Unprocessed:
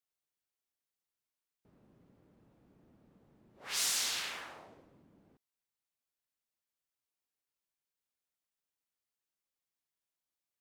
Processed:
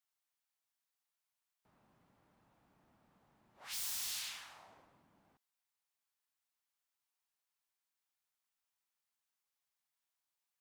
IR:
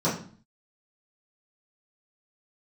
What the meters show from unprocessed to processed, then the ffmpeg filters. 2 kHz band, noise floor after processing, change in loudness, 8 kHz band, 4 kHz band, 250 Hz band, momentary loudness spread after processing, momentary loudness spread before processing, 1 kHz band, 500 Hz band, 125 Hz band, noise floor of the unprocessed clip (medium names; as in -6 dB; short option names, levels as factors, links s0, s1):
-9.5 dB, under -85 dBFS, -6.5 dB, -7.5 dB, -8.0 dB, -11.0 dB, 18 LU, 19 LU, -9.0 dB, -12.5 dB, -7.5 dB, under -85 dBFS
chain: -filter_complex "[0:a]aeval=exprs='0.0168*(abs(mod(val(0)/0.0168+3,4)-2)-1)':c=same,lowshelf=f=610:t=q:w=1.5:g=-9,acrossover=split=220|3000[s0][s1][s2];[s1]acompressor=threshold=0.00158:ratio=6[s3];[s0][s3][s2]amix=inputs=3:normalize=0,volume=1.12"